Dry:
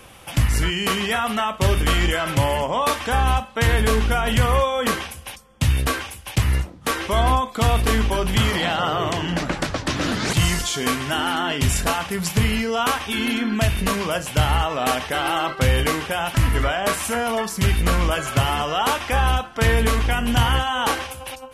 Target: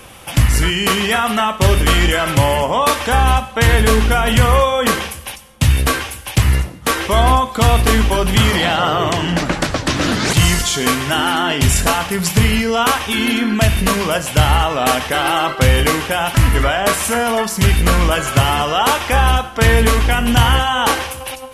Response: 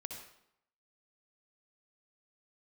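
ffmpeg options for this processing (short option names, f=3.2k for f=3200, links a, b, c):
-filter_complex "[0:a]asplit=2[a][b];[1:a]atrim=start_sample=2205,asetrate=37044,aresample=44100,highshelf=f=4.9k:g=8.5[c];[b][c]afir=irnorm=-1:irlink=0,volume=-11dB[d];[a][d]amix=inputs=2:normalize=0,volume=4.5dB"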